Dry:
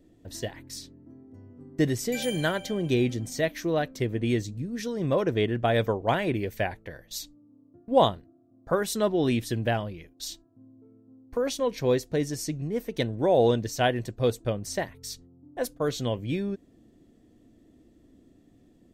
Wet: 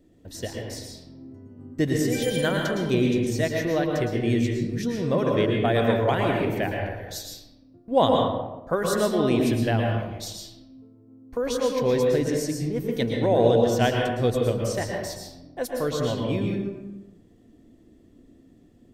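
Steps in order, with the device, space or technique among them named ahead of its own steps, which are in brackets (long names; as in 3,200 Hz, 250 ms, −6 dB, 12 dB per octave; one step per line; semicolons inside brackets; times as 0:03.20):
bathroom (convolution reverb RT60 1.0 s, pre-delay 107 ms, DRR 0 dB)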